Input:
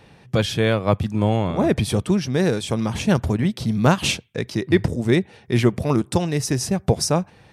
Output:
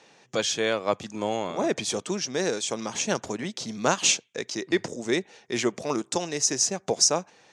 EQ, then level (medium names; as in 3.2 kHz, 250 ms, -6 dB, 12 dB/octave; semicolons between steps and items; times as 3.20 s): high-pass 340 Hz 12 dB/octave; resonant low-pass 6.7 kHz, resonance Q 4.7; -4.0 dB